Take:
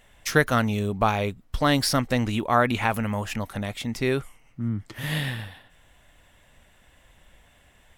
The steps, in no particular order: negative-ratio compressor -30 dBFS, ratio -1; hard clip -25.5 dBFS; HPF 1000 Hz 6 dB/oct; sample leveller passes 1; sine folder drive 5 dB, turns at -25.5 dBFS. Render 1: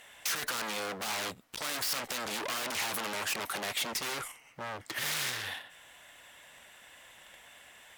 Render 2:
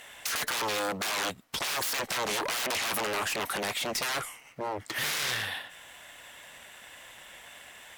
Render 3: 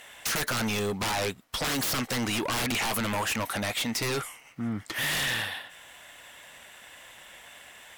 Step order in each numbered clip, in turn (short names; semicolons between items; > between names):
sample leveller > hard clip > sine folder > negative-ratio compressor > HPF; sine folder > HPF > sample leveller > negative-ratio compressor > hard clip; HPF > sine folder > negative-ratio compressor > sample leveller > hard clip